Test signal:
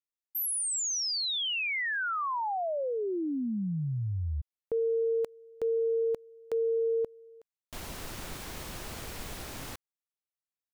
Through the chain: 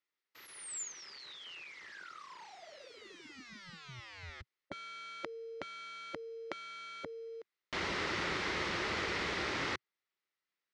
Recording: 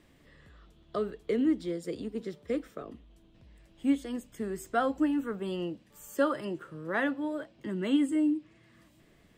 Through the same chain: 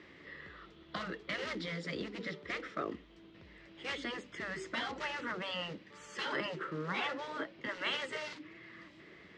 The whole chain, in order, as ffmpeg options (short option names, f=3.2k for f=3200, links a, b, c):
-af "acrusher=bits=6:mode=log:mix=0:aa=0.000001,highpass=120,equalizer=f=130:t=q:w=4:g=-10,equalizer=f=240:t=q:w=4:g=-7,equalizer=f=370:t=q:w=4:g=4,equalizer=f=700:t=q:w=4:g=-5,equalizer=f=1.3k:t=q:w=4:g=4,equalizer=f=2k:t=q:w=4:g=8,lowpass=f=5.1k:w=0.5412,lowpass=f=5.1k:w=1.3066,afftfilt=real='re*lt(hypot(re,im),0.0631)':imag='im*lt(hypot(re,im),0.0631)':win_size=1024:overlap=0.75,volume=6.5dB"